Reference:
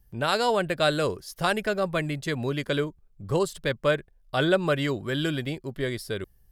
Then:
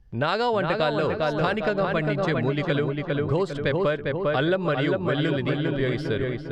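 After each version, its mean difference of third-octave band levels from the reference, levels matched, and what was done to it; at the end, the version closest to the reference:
9.0 dB: high-frequency loss of the air 160 metres
feedback echo with a low-pass in the loop 401 ms, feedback 49%, low-pass 2,600 Hz, level −4 dB
downward compressor, threshold −25 dBFS, peak gain reduction 8 dB
level +5.5 dB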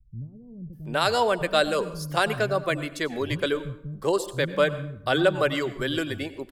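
13.0 dB: reverb reduction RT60 0.61 s
multiband delay without the direct sound lows, highs 730 ms, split 190 Hz
dense smooth reverb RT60 0.69 s, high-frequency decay 0.7×, pre-delay 80 ms, DRR 13.5 dB
level +2 dB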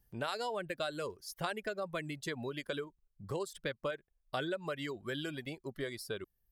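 3.5 dB: downward compressor 6 to 1, threshold −28 dBFS, peak gain reduction 11 dB
reverb reduction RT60 1.2 s
low-shelf EQ 120 Hz −9.5 dB
level −4.5 dB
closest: third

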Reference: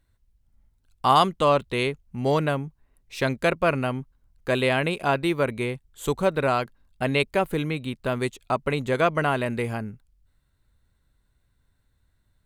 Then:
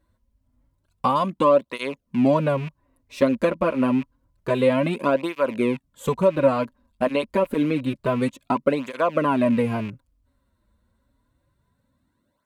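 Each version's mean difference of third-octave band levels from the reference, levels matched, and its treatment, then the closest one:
5.5 dB: loose part that buzzes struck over −38 dBFS, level −27 dBFS
downward compressor 6 to 1, threshold −22 dBFS, peak gain reduction 9.5 dB
hollow resonant body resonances 260/550/980 Hz, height 14 dB, ringing for 25 ms
through-zero flanger with one copy inverted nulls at 0.28 Hz, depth 7.7 ms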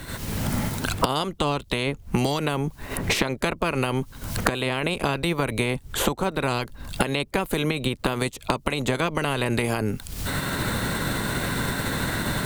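7.5 dB: ceiling on every frequency bin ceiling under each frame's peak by 14 dB
camcorder AGC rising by 56 dB per second
dynamic equaliser 1,800 Hz, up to −6 dB, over −36 dBFS, Q 0.86
multiband upward and downward compressor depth 100%
level −1.5 dB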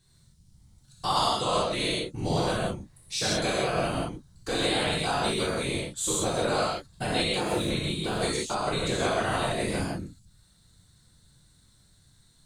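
11.5 dB: flat-topped bell 6,000 Hz +14 dB
downward compressor 2.5 to 1, threshold −35 dBFS, peak gain reduction 16 dB
random phases in short frames
reverb whose tail is shaped and stops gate 200 ms flat, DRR −7 dB
level −1 dB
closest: first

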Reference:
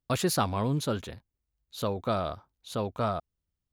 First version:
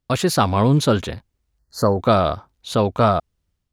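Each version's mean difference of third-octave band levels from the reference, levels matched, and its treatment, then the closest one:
2.0 dB: gain on a spectral selection 0:01.59–0:01.99, 2,000–4,100 Hz −29 dB
high-shelf EQ 11,000 Hz −10 dB
automatic gain control gain up to 5.5 dB
level +7.5 dB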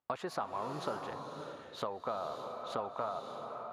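8.5 dB: resonant band-pass 930 Hz, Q 1.5
downward compressor 6 to 1, threshold −45 dBFS, peak gain reduction 18.5 dB
slow-attack reverb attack 600 ms, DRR 4 dB
level +10 dB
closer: first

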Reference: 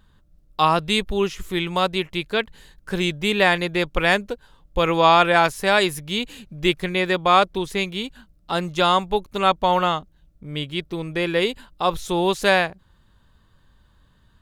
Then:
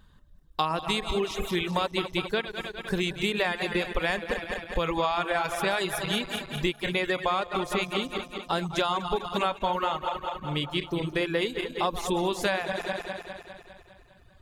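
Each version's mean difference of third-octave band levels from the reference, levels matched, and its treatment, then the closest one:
8.5 dB: feedback delay that plays each chunk backwards 101 ms, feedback 76%, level −7.5 dB
reverb reduction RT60 0.93 s
downward compressor 10 to 1, threshold −23 dBFS, peak gain reduction 13.5 dB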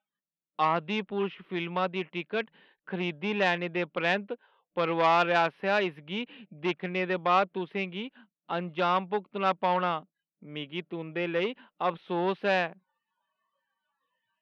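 5.5 dB: noise reduction from a noise print of the clip's start 27 dB
elliptic band-pass filter 180–2,900 Hz, stop band 40 dB
saturating transformer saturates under 1,400 Hz
level −6 dB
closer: second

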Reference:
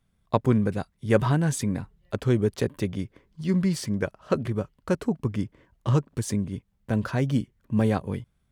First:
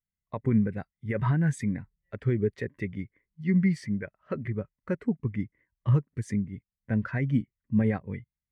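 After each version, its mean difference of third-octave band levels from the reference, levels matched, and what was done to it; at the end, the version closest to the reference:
7.0 dB: parametric band 2,000 Hz +14.5 dB 0.68 octaves
brickwall limiter −14 dBFS, peak gain reduction 10 dB
every bin expanded away from the loudest bin 1.5 to 1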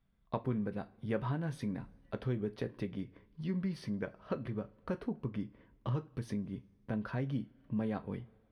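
4.0 dB: coupled-rooms reverb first 0.21 s, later 1.6 s, from −27 dB, DRR 8.5 dB
downward compressor 2 to 1, threshold −32 dBFS, peak gain reduction 10 dB
moving average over 6 samples
level −5.5 dB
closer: second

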